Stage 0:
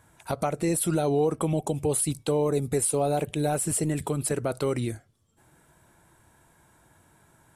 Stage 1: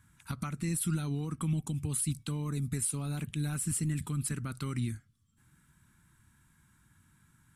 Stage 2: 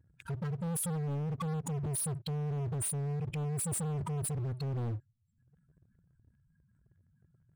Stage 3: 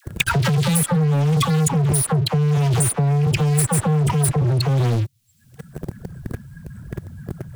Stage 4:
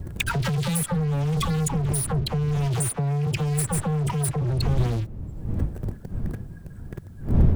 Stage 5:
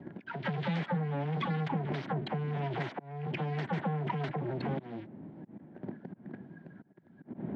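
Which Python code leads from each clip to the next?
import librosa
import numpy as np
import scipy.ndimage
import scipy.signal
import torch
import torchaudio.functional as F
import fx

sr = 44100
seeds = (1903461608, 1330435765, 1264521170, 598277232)

y1 = fx.curve_eq(x, sr, hz=(230.0, 470.0, 670.0, 1200.0), db=(0, -23, -25, -4))
y1 = y1 * 10.0 ** (-2.0 / 20.0)
y2 = fx.spec_expand(y1, sr, power=2.5)
y2 = fx.leveller(y2, sr, passes=2)
y2 = np.clip(y2, -10.0 ** (-33.0 / 20.0), 10.0 ** (-33.0 / 20.0))
y3 = fx.dispersion(y2, sr, late='lows', ms=64.0, hz=900.0)
y3 = fx.leveller(y3, sr, passes=3)
y3 = fx.band_squash(y3, sr, depth_pct=100)
y3 = y3 * 10.0 ** (9.0 / 20.0)
y4 = fx.dmg_wind(y3, sr, seeds[0], corner_hz=110.0, level_db=-22.0)
y4 = y4 * 10.0 ** (-6.5 / 20.0)
y5 = fx.tracing_dist(y4, sr, depth_ms=0.23)
y5 = fx.auto_swell(y5, sr, attack_ms=331.0)
y5 = fx.cabinet(y5, sr, low_hz=200.0, low_slope=24, high_hz=2700.0, hz=(470.0, 1200.0, 2600.0), db=(-8, -9, -6))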